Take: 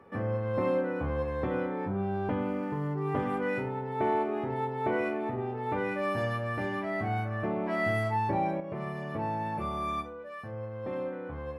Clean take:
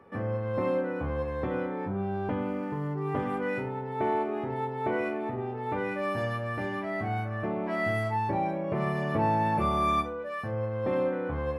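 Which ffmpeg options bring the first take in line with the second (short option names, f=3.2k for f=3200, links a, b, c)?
-af "asetnsamples=n=441:p=0,asendcmd='8.6 volume volume 7dB',volume=0dB"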